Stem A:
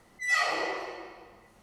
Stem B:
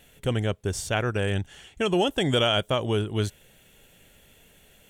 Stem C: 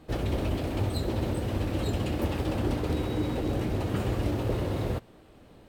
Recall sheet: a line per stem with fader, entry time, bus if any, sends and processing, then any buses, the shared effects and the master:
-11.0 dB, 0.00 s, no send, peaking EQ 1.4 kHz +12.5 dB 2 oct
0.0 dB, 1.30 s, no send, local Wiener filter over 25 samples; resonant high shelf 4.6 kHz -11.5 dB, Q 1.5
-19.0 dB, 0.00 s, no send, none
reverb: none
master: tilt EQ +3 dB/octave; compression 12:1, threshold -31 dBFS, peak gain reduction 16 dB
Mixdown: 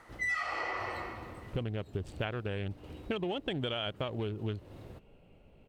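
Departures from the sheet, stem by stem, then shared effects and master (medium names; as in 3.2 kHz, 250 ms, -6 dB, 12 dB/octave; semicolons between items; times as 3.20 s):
stem A -11.0 dB -> -4.0 dB; master: missing tilt EQ +3 dB/octave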